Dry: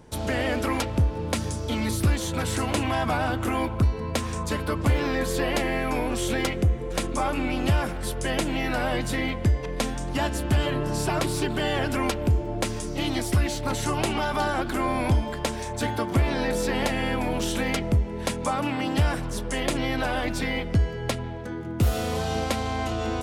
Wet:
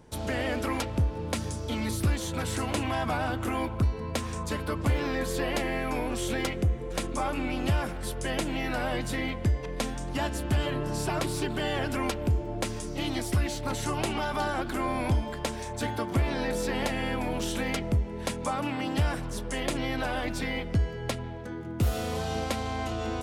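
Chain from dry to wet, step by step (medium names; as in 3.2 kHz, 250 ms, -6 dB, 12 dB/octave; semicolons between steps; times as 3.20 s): trim -4 dB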